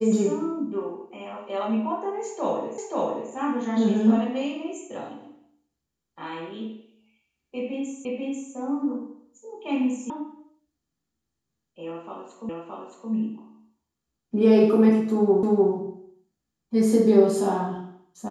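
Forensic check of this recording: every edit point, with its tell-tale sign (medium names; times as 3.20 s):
2.78 s: repeat of the last 0.53 s
8.05 s: repeat of the last 0.49 s
10.10 s: sound stops dead
12.49 s: repeat of the last 0.62 s
15.43 s: repeat of the last 0.3 s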